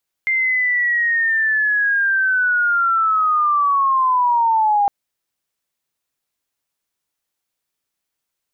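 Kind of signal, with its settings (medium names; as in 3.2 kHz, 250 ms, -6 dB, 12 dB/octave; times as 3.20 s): sweep linear 2.1 kHz -> 800 Hz -15 dBFS -> -12.5 dBFS 4.61 s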